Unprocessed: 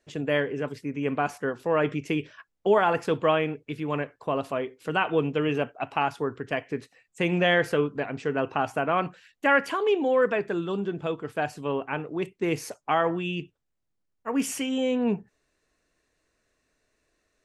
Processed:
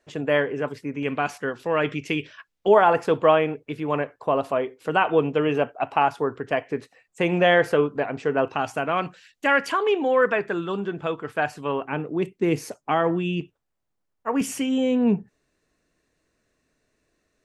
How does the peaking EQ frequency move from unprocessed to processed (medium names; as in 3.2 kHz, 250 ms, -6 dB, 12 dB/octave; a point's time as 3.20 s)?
peaking EQ +6.5 dB 2.1 oct
930 Hz
from 1.03 s 3.3 kHz
from 2.68 s 730 Hz
from 8.48 s 5.7 kHz
from 9.72 s 1.4 kHz
from 11.85 s 230 Hz
from 13.41 s 860 Hz
from 14.41 s 180 Hz